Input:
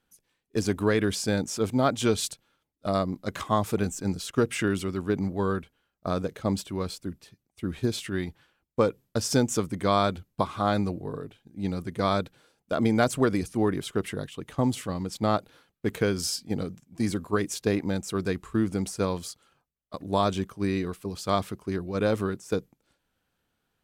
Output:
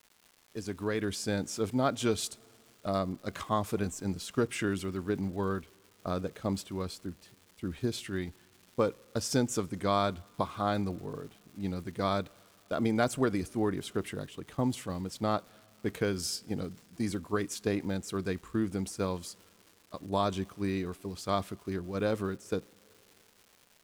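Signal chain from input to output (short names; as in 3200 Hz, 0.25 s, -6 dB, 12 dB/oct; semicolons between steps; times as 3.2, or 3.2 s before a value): opening faded in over 1.34 s; two-slope reverb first 0.25 s, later 3.5 s, from -18 dB, DRR 20 dB; crackle 460/s -42 dBFS; gain -5 dB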